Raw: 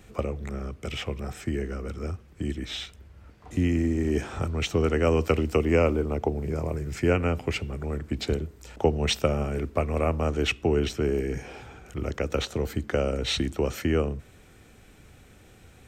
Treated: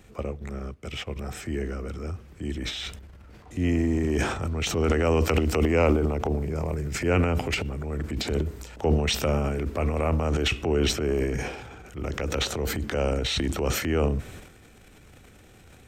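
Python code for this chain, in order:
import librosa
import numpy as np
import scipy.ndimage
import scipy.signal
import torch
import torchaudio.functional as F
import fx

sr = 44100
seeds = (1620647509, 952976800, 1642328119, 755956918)

y = fx.transient(x, sr, attack_db=-5, sustain_db=fx.steps((0.0, -9.0), (1.15, 5.0), (2.6, 11.0)))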